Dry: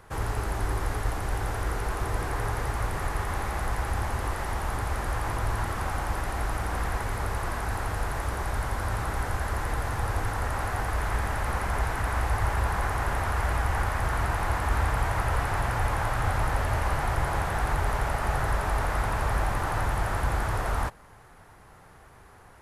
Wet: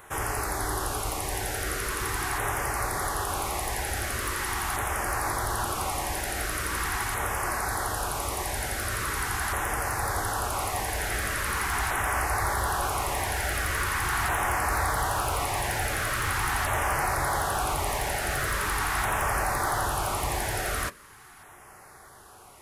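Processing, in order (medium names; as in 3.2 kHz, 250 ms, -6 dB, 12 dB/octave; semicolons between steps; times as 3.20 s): tilt EQ +2.5 dB/octave; hard clipper -24 dBFS, distortion -20 dB; LFO notch saw down 0.42 Hz 480–5000 Hz; on a send: reverberation RT60 0.15 s, pre-delay 3 ms, DRR 9 dB; on the sum: trim +3.5 dB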